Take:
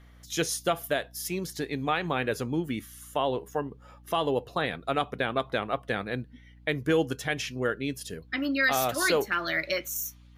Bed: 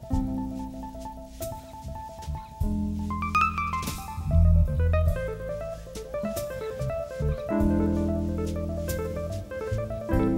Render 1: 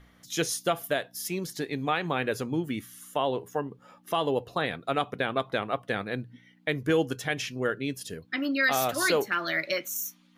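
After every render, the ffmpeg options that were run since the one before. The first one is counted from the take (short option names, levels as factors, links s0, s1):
-af "bandreject=f=60:t=h:w=4,bandreject=f=120:t=h:w=4"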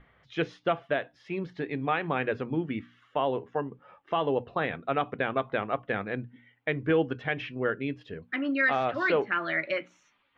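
-af "lowpass=f=2800:w=0.5412,lowpass=f=2800:w=1.3066,bandreject=f=60:t=h:w=6,bandreject=f=120:t=h:w=6,bandreject=f=180:t=h:w=6,bandreject=f=240:t=h:w=6,bandreject=f=300:t=h:w=6"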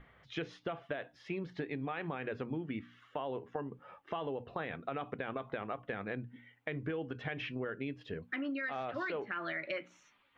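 -af "alimiter=limit=0.0891:level=0:latency=1:release=30,acompressor=threshold=0.0178:ratio=6"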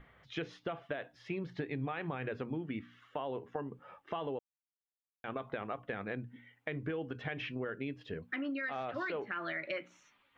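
-filter_complex "[0:a]asettb=1/sr,asplit=3[s0][s1][s2];[s0]atrim=end=1.174[s3];[s1]atrim=start=1.17:end=2.29,asetpts=PTS-STARTPTS,afade=t=in:d=0.004:c=qsin,afade=t=out:st=1.116:d=0.004:c=qsin,equalizer=f=120:t=o:w=0.35:g=9.5[s4];[s2]atrim=start=2.286[s5];[s3][s4]acrossfade=d=0.004:c1=hsin:c2=qsin[s6];[s6][s5]acrossfade=d=0.004:c1=qsin:c2=hsin,asplit=3[s7][s8][s9];[s7]atrim=end=4.39,asetpts=PTS-STARTPTS,afade=t=out:st=4.386:d=0.004:c=hsin[s10];[s8]atrim=start=4.39:end=5.24,asetpts=PTS-STARTPTS,volume=0[s11];[s9]atrim=start=5.24,asetpts=PTS-STARTPTS,afade=t=in:d=0.004:c=hsin[s12];[s10][s11][s12]concat=n=3:v=0:a=1"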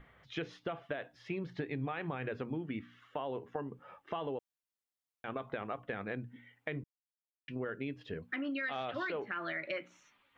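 -filter_complex "[0:a]asettb=1/sr,asplit=3[s0][s1][s2];[s0]atrim=end=8.474[s3];[s1]atrim=start=8.47:end=9.07,asetpts=PTS-STARTPTS,afade=t=in:d=0.004:c=qsin,afade=t=out:st=0.596:d=0.004:c=qsin,equalizer=f=3300:w=2.5:g=10[s4];[s2]atrim=start=9.066[s5];[s3][s4]acrossfade=d=0.004:c1=hsin:c2=qsin[s6];[s6][s5]acrossfade=d=0.004:c1=qsin:c2=hsin,asplit=3[s7][s8][s9];[s7]atrim=end=6.84,asetpts=PTS-STARTPTS,afade=t=out:st=6.836:d=0.004:c=hsin[s10];[s8]atrim=start=6.84:end=7.48,asetpts=PTS-STARTPTS,volume=0[s11];[s9]atrim=start=7.48,asetpts=PTS-STARTPTS,afade=t=in:d=0.004:c=hsin[s12];[s10][s11][s12]concat=n=3:v=0:a=1"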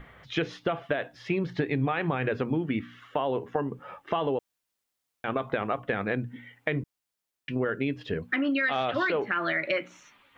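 -af "volume=3.35"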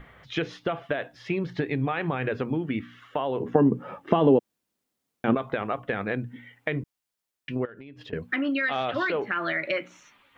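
-filter_complex "[0:a]asettb=1/sr,asplit=3[s0][s1][s2];[s0]atrim=end=3.404[s3];[s1]atrim=start=3.4:end=5.35,asetpts=PTS-STARTPTS,afade=t=in:d=0.004:c=qsin,afade=t=out:st=1.946:d=0.004:c=qsin,equalizer=f=230:w=0.55:g=14.5[s4];[s2]atrim=start=5.346[s5];[s3][s4]acrossfade=d=0.004:c1=hsin:c2=qsin[s6];[s6][s5]acrossfade=d=0.004:c1=qsin:c2=hsin,asettb=1/sr,asplit=3[s7][s8][s9];[s7]atrim=end=7.654[s10];[s8]atrim=start=7.65:end=8.13,asetpts=PTS-STARTPTS,afade=t=in:d=0.004:c=qsin,afade=t=out:st=0.476:d=0.004:c=qsin,acompressor=threshold=0.01:ratio=12:attack=3.2:release=140:knee=1:detection=peak[s11];[s9]atrim=start=8.126[s12];[s10][s11]acrossfade=d=0.004:c1=hsin:c2=qsin[s13];[s13][s12]acrossfade=d=0.004:c1=qsin:c2=hsin"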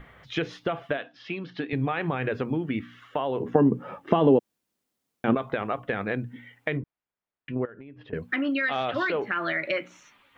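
-filter_complex "[0:a]asettb=1/sr,asplit=3[s0][s1][s2];[s0]atrim=end=0.974[s3];[s1]atrim=start=0.97:end=1.73,asetpts=PTS-STARTPTS,afade=t=in:d=0.004:c=qsin,afade=t=out:st=0.756:d=0.004:c=qsin,highpass=260,equalizer=f=270:t=q:w=4:g=4,equalizer=f=390:t=q:w=4:g=-8,equalizer=f=570:t=q:w=4:g=-7,equalizer=f=900:t=q:w=4:g=-6,equalizer=f=2000:t=q:w=4:g=-6,equalizer=f=3000:t=q:w=4:g=4,lowpass=f=5100:w=0.5412,lowpass=f=5100:w=1.3066[s4];[s2]atrim=start=1.726[s5];[s3][s4]acrossfade=d=0.004:c1=hsin:c2=qsin[s6];[s6][s5]acrossfade=d=0.004:c1=qsin:c2=hsin,asettb=1/sr,asplit=3[s7][s8][s9];[s7]atrim=end=6.774[s10];[s8]atrim=start=6.77:end=8.14,asetpts=PTS-STARTPTS,afade=t=in:d=0.004:c=qsin,afade=t=out:st=1.366:d=0.004:c=qsin,lowpass=2000[s11];[s9]atrim=start=8.136[s12];[s10][s11]acrossfade=d=0.004:c1=hsin:c2=qsin[s13];[s13][s12]acrossfade=d=0.004:c1=qsin:c2=hsin"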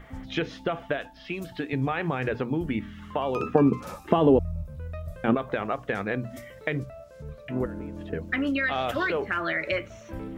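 -filter_complex "[1:a]volume=0.224[s0];[0:a][s0]amix=inputs=2:normalize=0"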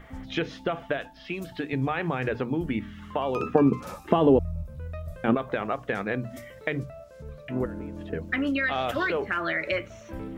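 -af "bandreject=f=50:t=h:w=6,bandreject=f=100:t=h:w=6,bandreject=f=150:t=h:w=6"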